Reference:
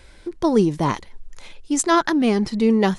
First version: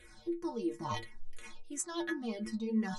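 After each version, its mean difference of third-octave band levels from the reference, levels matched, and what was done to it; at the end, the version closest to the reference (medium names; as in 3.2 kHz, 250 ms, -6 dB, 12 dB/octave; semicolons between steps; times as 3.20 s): 6.0 dB: reverse; compression 6:1, threshold -28 dBFS, peak gain reduction 15.5 dB; reverse; inharmonic resonator 110 Hz, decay 0.3 s, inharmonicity 0.008; barber-pole phaser -2.9 Hz; trim +7 dB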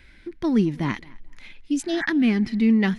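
4.0 dB: spectral replace 1.73–2.03 s, 690–2400 Hz both; graphic EQ 250/500/1000/2000/8000 Hz +7/-9/-6/+9/-11 dB; on a send: tape echo 219 ms, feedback 24%, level -23 dB, low-pass 4.3 kHz; on the sum: trim -4.5 dB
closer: second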